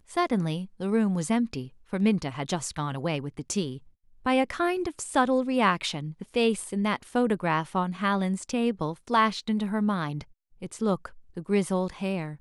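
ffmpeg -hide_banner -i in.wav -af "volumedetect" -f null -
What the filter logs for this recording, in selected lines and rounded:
mean_volume: -27.5 dB
max_volume: -9.2 dB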